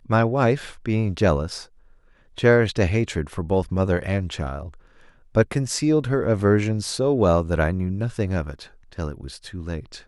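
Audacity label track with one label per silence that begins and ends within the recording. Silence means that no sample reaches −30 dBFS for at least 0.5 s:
1.620000	2.380000	silence
4.680000	5.350000	silence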